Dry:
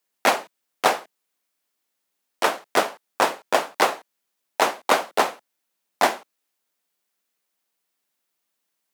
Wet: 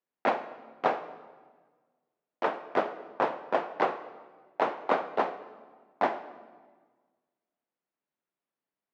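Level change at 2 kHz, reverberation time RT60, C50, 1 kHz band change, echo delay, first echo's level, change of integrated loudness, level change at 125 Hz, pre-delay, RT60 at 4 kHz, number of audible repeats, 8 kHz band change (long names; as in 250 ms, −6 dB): −11.0 dB, 1.5 s, 12.5 dB, −7.0 dB, no echo audible, no echo audible, −8.0 dB, can't be measured, 20 ms, 1.1 s, no echo audible, below −30 dB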